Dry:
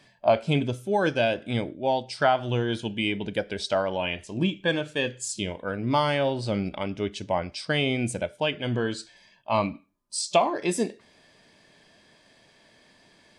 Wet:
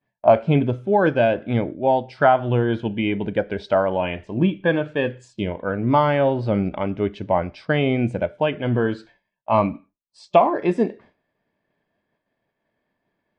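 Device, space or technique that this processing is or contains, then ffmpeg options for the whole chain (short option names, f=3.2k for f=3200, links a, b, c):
hearing-loss simulation: -af "lowpass=1.7k,agate=range=-33dB:threshold=-47dB:ratio=3:detection=peak,volume=6.5dB"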